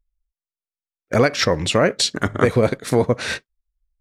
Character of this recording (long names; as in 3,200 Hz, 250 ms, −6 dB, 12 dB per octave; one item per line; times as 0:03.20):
background noise floor −95 dBFS
spectral slope −4.5 dB per octave